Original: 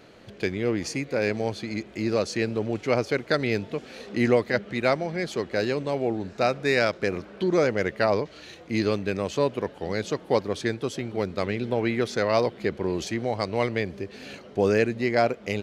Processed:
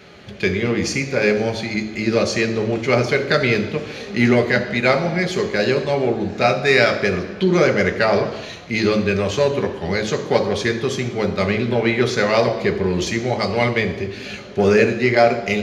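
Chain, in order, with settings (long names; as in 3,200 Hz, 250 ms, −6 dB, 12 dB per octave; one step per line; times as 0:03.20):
in parallel at −8 dB: hard clipping −19 dBFS, distortion −11 dB
on the sum: convolution reverb RT60 1.0 s, pre-delay 3 ms, DRR 3.5 dB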